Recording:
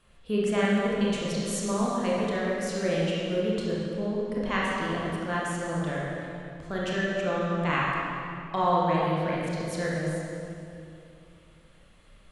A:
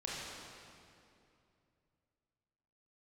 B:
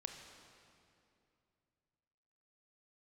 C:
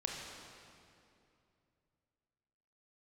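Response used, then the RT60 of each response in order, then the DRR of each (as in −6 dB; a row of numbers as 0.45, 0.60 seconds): A; 2.6, 2.6, 2.7 seconds; −6.0, 4.0, −1.0 decibels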